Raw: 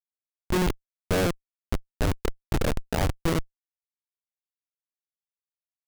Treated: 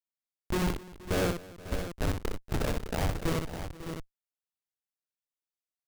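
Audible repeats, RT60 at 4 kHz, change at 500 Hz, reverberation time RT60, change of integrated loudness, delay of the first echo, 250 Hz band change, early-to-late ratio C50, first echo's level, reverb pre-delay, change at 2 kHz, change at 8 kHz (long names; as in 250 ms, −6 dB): 5, no reverb audible, −4.0 dB, no reverb audible, −5.0 dB, 62 ms, −4.0 dB, no reverb audible, −5.5 dB, no reverb audible, −4.0 dB, −4.0 dB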